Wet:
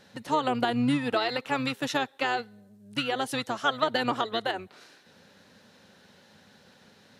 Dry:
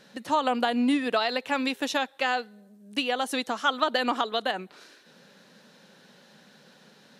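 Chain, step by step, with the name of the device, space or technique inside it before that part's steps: octave pedal (harmoniser -12 st -9 dB); gain -2 dB

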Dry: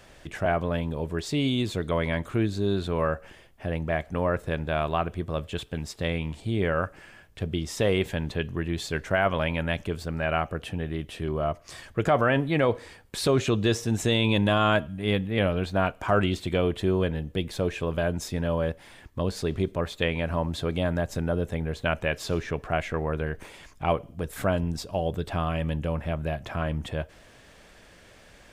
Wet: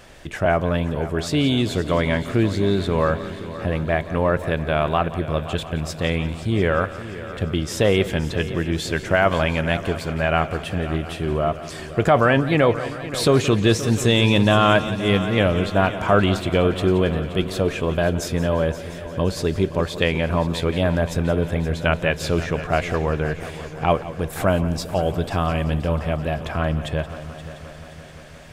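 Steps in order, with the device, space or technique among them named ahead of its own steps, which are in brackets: multi-head tape echo (multi-head echo 0.175 s, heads first and third, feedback 67%, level -15.5 dB; wow and flutter 25 cents); gain +6 dB

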